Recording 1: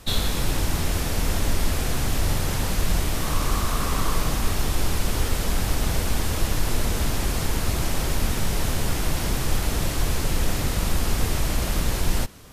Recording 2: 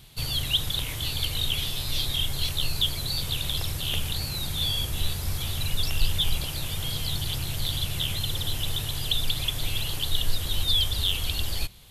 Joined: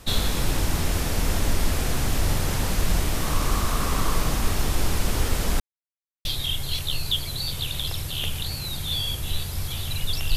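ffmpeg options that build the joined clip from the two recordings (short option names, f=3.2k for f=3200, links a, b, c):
-filter_complex "[0:a]apad=whole_dur=10.36,atrim=end=10.36,asplit=2[a][b];[a]atrim=end=5.6,asetpts=PTS-STARTPTS,afade=t=out:st=5.596:d=0.004:c=hsin[c];[b]atrim=start=5.6:end=6.25,asetpts=PTS-STARTPTS,volume=0[d];[1:a]atrim=start=1.95:end=6.06,asetpts=PTS-STARTPTS,afade=t=in:d=0.004:c=hsin[e];[c][d][e]concat=n=3:v=0:a=1"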